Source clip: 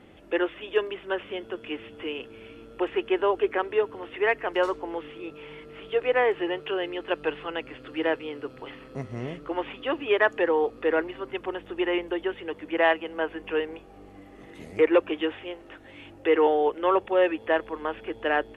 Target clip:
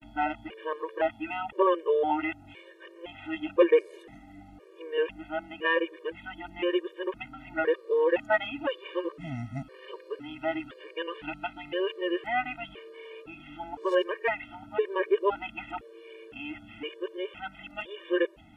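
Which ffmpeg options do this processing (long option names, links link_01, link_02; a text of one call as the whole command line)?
ffmpeg -i in.wav -af "areverse,afftfilt=real='re*gt(sin(2*PI*0.98*pts/sr)*(1-2*mod(floor(b*sr/1024/310),2)),0)':imag='im*gt(sin(2*PI*0.98*pts/sr)*(1-2*mod(floor(b*sr/1024/310),2)),0)':win_size=1024:overlap=0.75" out.wav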